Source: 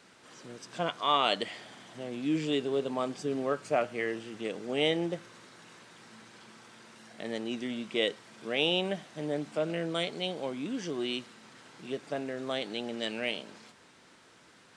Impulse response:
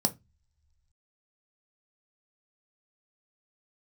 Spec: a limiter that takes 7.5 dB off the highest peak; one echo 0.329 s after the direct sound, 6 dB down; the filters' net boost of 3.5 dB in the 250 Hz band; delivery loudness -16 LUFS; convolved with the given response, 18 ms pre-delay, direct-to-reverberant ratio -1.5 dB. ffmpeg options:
-filter_complex "[0:a]equalizer=f=250:t=o:g=4.5,alimiter=limit=-19.5dB:level=0:latency=1,aecho=1:1:329:0.501,asplit=2[a][b];[1:a]atrim=start_sample=2205,adelay=18[c];[b][c]afir=irnorm=-1:irlink=0,volume=-5dB[d];[a][d]amix=inputs=2:normalize=0,volume=8.5dB"

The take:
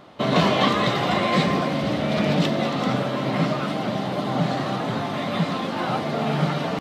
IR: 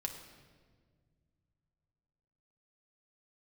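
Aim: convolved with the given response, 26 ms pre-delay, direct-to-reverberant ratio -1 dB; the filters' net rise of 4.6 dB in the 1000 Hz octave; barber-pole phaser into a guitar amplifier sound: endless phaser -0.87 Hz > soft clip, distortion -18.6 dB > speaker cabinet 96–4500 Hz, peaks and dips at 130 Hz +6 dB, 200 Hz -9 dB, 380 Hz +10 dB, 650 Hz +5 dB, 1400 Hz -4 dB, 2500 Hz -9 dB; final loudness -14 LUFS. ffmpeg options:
-filter_complex "[0:a]equalizer=f=1k:t=o:g=5,asplit=2[a][b];[1:a]atrim=start_sample=2205,adelay=26[c];[b][c]afir=irnorm=-1:irlink=0,volume=1dB[d];[a][d]amix=inputs=2:normalize=0,asplit=2[e][f];[f]afreqshift=-0.87[g];[e][g]amix=inputs=2:normalize=1,asoftclip=threshold=-10.5dB,highpass=96,equalizer=f=130:t=q:w=4:g=6,equalizer=f=200:t=q:w=4:g=-9,equalizer=f=380:t=q:w=4:g=10,equalizer=f=650:t=q:w=4:g=5,equalizer=f=1.4k:t=q:w=4:g=-4,equalizer=f=2.5k:t=q:w=4:g=-9,lowpass=f=4.5k:w=0.5412,lowpass=f=4.5k:w=1.3066,volume=6.5dB"

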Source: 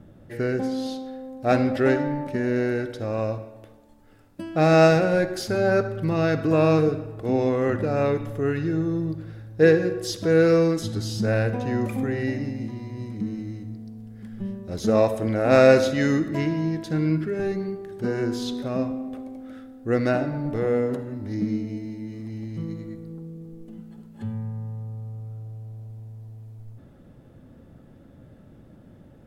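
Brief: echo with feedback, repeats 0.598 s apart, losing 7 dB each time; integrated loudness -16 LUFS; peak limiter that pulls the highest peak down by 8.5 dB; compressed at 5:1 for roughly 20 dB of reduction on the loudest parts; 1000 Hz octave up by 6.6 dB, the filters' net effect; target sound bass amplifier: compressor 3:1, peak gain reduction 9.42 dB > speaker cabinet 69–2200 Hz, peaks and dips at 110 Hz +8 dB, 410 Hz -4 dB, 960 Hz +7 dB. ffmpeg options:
-af "equalizer=f=1k:t=o:g=6,acompressor=threshold=-33dB:ratio=5,alimiter=level_in=6dB:limit=-24dB:level=0:latency=1,volume=-6dB,aecho=1:1:598|1196|1794|2392|2990:0.447|0.201|0.0905|0.0407|0.0183,acompressor=threshold=-44dB:ratio=3,highpass=f=69:w=0.5412,highpass=f=69:w=1.3066,equalizer=f=110:t=q:w=4:g=8,equalizer=f=410:t=q:w=4:g=-4,equalizer=f=960:t=q:w=4:g=7,lowpass=f=2.2k:w=0.5412,lowpass=f=2.2k:w=1.3066,volume=26.5dB"

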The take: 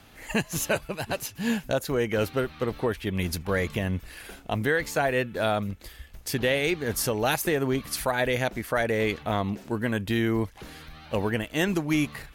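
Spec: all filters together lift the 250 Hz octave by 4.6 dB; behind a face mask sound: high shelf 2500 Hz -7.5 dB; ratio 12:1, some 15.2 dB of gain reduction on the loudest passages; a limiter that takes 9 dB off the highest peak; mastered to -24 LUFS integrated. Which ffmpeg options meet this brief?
-af "equalizer=f=250:t=o:g=6,acompressor=threshold=-33dB:ratio=12,alimiter=level_in=6dB:limit=-24dB:level=0:latency=1,volume=-6dB,highshelf=f=2.5k:g=-7.5,volume=17.5dB"

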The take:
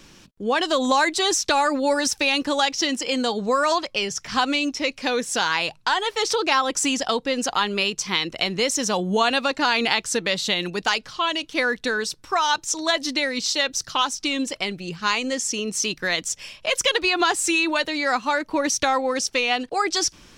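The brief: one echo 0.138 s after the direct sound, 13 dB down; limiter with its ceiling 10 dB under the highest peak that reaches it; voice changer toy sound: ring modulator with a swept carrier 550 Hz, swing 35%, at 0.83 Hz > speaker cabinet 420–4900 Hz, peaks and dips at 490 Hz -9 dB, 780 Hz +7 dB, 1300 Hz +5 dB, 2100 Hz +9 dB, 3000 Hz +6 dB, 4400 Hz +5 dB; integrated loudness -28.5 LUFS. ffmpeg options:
-af "alimiter=limit=-14dB:level=0:latency=1,aecho=1:1:138:0.224,aeval=exprs='val(0)*sin(2*PI*550*n/s+550*0.35/0.83*sin(2*PI*0.83*n/s))':c=same,highpass=420,equalizer=f=490:t=q:w=4:g=-9,equalizer=f=780:t=q:w=4:g=7,equalizer=f=1.3k:t=q:w=4:g=5,equalizer=f=2.1k:t=q:w=4:g=9,equalizer=f=3k:t=q:w=4:g=6,equalizer=f=4.4k:t=q:w=4:g=5,lowpass=f=4.9k:w=0.5412,lowpass=f=4.9k:w=1.3066,volume=-5dB"

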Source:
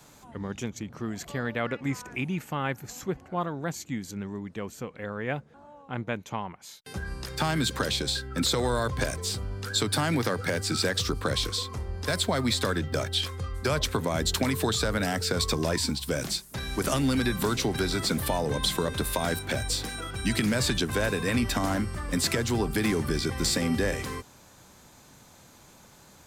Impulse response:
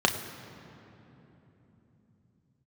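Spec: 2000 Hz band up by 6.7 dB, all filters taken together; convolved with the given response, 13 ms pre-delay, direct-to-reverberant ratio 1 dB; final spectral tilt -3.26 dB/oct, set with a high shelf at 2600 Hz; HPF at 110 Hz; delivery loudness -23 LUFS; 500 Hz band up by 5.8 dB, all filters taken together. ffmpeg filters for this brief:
-filter_complex "[0:a]highpass=110,equalizer=f=500:t=o:g=6.5,equalizer=f=2k:t=o:g=5.5,highshelf=f=2.6k:g=6.5,asplit=2[a][b];[1:a]atrim=start_sample=2205,adelay=13[c];[b][c]afir=irnorm=-1:irlink=0,volume=-15dB[d];[a][d]amix=inputs=2:normalize=0,volume=-1dB"

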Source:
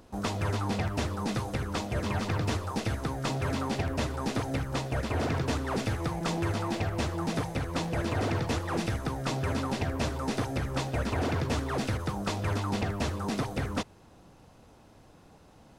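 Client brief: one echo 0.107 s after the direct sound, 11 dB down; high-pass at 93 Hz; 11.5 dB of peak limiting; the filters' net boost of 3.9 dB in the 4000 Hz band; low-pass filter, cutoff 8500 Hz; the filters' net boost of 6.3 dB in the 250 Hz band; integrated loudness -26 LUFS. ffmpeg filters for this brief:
-af "highpass=93,lowpass=8.5k,equalizer=f=250:t=o:g=8,equalizer=f=4k:t=o:g=5,alimiter=level_in=0.5dB:limit=-24dB:level=0:latency=1,volume=-0.5dB,aecho=1:1:107:0.282,volume=7dB"

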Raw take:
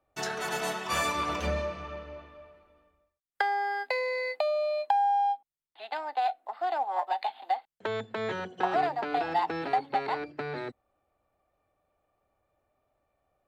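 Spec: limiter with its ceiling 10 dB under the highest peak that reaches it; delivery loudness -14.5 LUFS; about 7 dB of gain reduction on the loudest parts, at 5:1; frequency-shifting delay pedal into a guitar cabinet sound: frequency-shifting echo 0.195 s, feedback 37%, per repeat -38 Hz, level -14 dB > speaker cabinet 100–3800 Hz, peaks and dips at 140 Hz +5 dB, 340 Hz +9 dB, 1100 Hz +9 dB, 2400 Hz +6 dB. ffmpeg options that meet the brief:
-filter_complex "[0:a]acompressor=threshold=-30dB:ratio=5,alimiter=level_in=2.5dB:limit=-24dB:level=0:latency=1,volume=-2.5dB,asplit=5[a][b][c][d][e];[b]adelay=195,afreqshift=-38,volume=-14dB[f];[c]adelay=390,afreqshift=-76,volume=-22.6dB[g];[d]adelay=585,afreqshift=-114,volume=-31.3dB[h];[e]adelay=780,afreqshift=-152,volume=-39.9dB[i];[a][f][g][h][i]amix=inputs=5:normalize=0,highpass=100,equalizer=f=140:t=q:w=4:g=5,equalizer=f=340:t=q:w=4:g=9,equalizer=f=1.1k:t=q:w=4:g=9,equalizer=f=2.4k:t=q:w=4:g=6,lowpass=f=3.8k:w=0.5412,lowpass=f=3.8k:w=1.3066,volume=19dB"

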